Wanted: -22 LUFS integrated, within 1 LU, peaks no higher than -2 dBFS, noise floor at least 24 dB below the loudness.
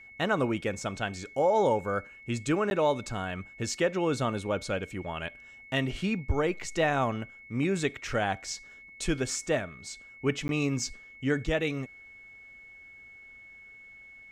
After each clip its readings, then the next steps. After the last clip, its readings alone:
dropouts 2; longest dropout 11 ms; steady tone 2.2 kHz; tone level -48 dBFS; loudness -30.5 LUFS; peak level -14.5 dBFS; loudness target -22.0 LUFS
-> interpolate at 2.70/10.48 s, 11 ms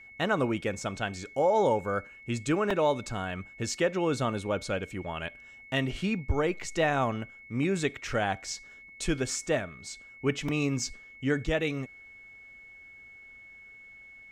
dropouts 0; steady tone 2.2 kHz; tone level -48 dBFS
-> band-stop 2.2 kHz, Q 30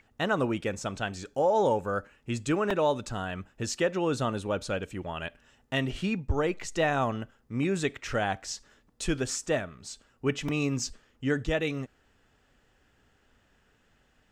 steady tone not found; loudness -30.5 LUFS; peak level -14.5 dBFS; loudness target -22.0 LUFS
-> trim +8.5 dB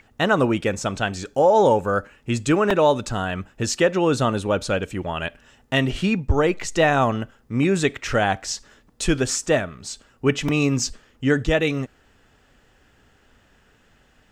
loudness -22.0 LUFS; peak level -6.0 dBFS; noise floor -59 dBFS

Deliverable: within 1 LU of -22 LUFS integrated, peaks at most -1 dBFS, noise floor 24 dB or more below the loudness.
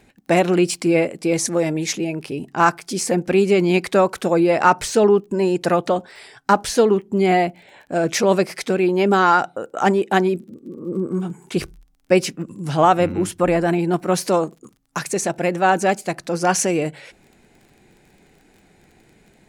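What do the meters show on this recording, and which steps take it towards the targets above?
tick rate 25 per s; loudness -19.5 LUFS; peak level -1.5 dBFS; loudness target -22.0 LUFS
-> de-click; trim -2.5 dB

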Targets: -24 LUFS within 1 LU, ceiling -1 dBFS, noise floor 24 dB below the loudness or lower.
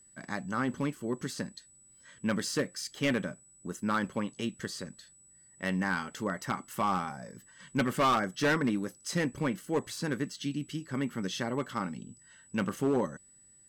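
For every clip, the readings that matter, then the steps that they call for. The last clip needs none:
clipped samples 1.1%; clipping level -22.0 dBFS; steady tone 7.9 kHz; tone level -57 dBFS; loudness -33.0 LUFS; peak level -22.0 dBFS; loudness target -24.0 LUFS
-> clip repair -22 dBFS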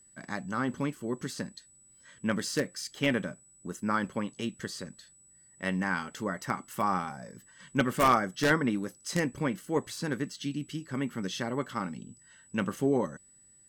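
clipped samples 0.0%; steady tone 7.9 kHz; tone level -57 dBFS
-> band-stop 7.9 kHz, Q 30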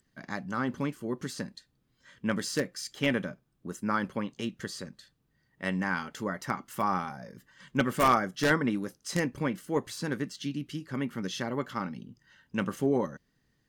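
steady tone not found; loudness -32.0 LUFS; peak level -13.0 dBFS; loudness target -24.0 LUFS
-> trim +8 dB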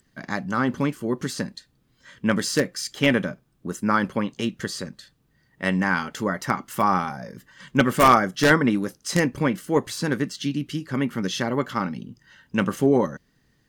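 loudness -24.0 LUFS; peak level -5.0 dBFS; noise floor -66 dBFS

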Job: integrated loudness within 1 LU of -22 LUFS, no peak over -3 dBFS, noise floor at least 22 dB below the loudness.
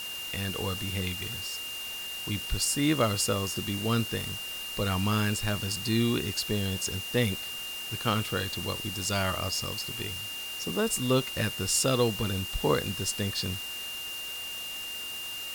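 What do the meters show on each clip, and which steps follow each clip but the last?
steady tone 2.8 kHz; tone level -36 dBFS; noise floor -38 dBFS; noise floor target -52 dBFS; loudness -29.5 LUFS; peak level -12.5 dBFS; loudness target -22.0 LUFS
-> band-stop 2.8 kHz, Q 30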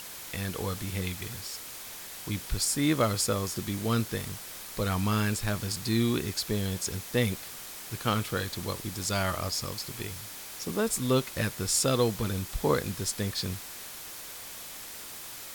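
steady tone not found; noise floor -43 dBFS; noise floor target -53 dBFS
-> noise reduction 10 dB, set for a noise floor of -43 dBFS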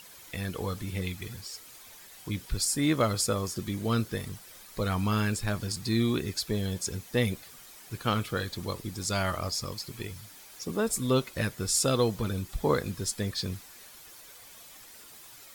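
noise floor -50 dBFS; noise floor target -53 dBFS
-> noise reduction 6 dB, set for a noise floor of -50 dBFS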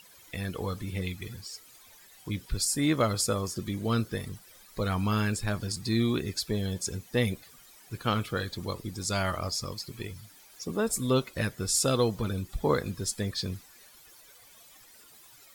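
noise floor -55 dBFS; loudness -30.5 LUFS; peak level -12.5 dBFS; loudness target -22.0 LUFS
-> trim +8.5 dB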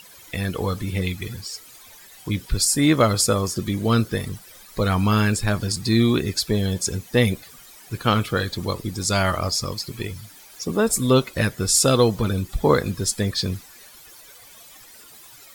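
loudness -22.0 LUFS; peak level -4.0 dBFS; noise floor -47 dBFS

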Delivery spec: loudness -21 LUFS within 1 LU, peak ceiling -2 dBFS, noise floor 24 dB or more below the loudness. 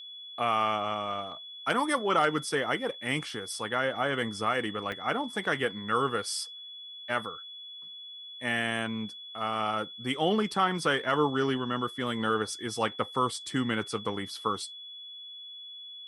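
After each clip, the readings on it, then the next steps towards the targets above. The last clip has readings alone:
dropouts 1; longest dropout 2.7 ms; steady tone 3.4 kHz; tone level -42 dBFS; loudness -30.0 LUFS; peak level -12.0 dBFS; loudness target -21.0 LUFS
-> interpolate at 4.92 s, 2.7 ms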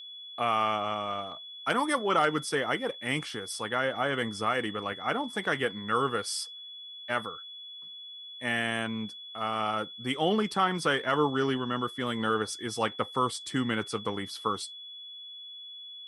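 dropouts 0; steady tone 3.4 kHz; tone level -42 dBFS
-> band-stop 3.4 kHz, Q 30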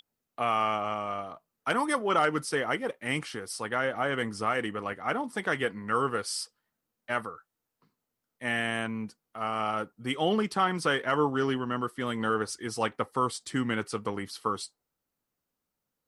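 steady tone not found; loudness -30.0 LUFS; peak level -11.5 dBFS; loudness target -21.0 LUFS
-> trim +9 dB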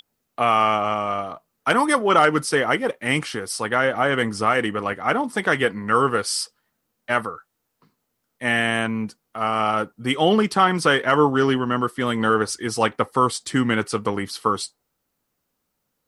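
loudness -21.0 LUFS; peak level -2.5 dBFS; noise floor -76 dBFS

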